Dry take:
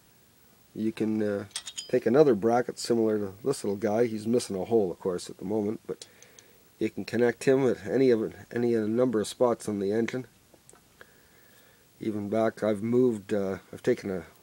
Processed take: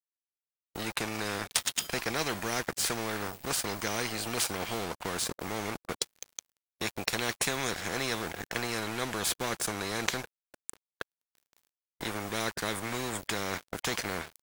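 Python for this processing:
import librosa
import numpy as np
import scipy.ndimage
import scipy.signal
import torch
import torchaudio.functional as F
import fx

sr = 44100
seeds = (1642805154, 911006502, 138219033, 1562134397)

y = np.sign(x) * np.maximum(np.abs(x) - 10.0 ** (-47.5 / 20.0), 0.0)
y = fx.spectral_comp(y, sr, ratio=4.0)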